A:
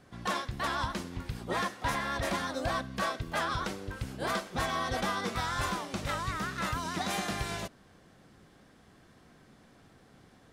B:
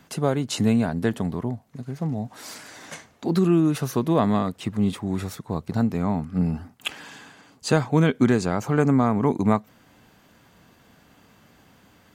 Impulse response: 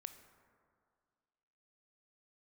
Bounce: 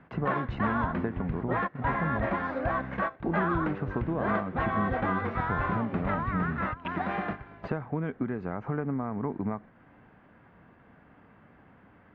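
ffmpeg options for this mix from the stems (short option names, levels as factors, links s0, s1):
-filter_complex "[0:a]volume=1.41[s0];[1:a]highshelf=f=2400:g=3,acompressor=threshold=0.0501:ratio=16,volume=0.891,asplit=2[s1][s2];[s2]apad=whole_len=468392[s3];[s0][s3]sidechaingate=range=0.158:threshold=0.00447:ratio=16:detection=peak[s4];[s4][s1]amix=inputs=2:normalize=0,lowpass=f=2000:w=0.5412,lowpass=f=2000:w=1.3066"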